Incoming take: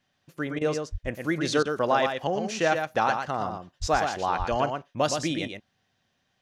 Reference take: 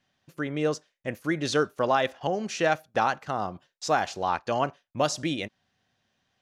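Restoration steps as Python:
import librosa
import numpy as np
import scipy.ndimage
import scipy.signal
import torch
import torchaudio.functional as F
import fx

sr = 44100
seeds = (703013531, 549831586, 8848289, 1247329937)

y = fx.fix_deplosive(x, sr, at_s=(0.91, 3.8, 4.38))
y = fx.fix_interpolate(y, sr, at_s=(0.59, 1.63), length_ms=21.0)
y = fx.fix_echo_inverse(y, sr, delay_ms=117, level_db=-6.0)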